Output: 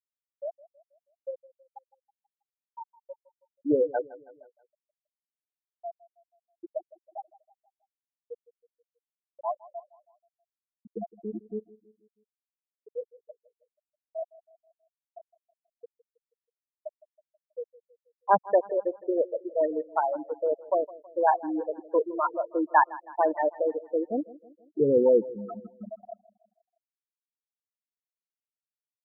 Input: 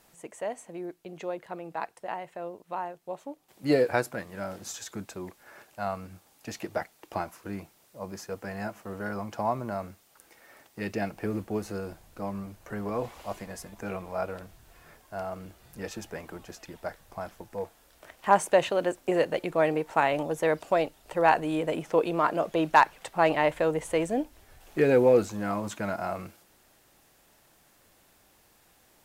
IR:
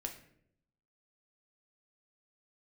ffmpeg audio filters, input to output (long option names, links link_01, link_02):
-af "afftfilt=real='re*gte(hypot(re,im),0.251)':imag='im*gte(hypot(re,im),0.251)':win_size=1024:overlap=0.75,aecho=1:1:161|322|483|644:0.1|0.05|0.025|0.0125"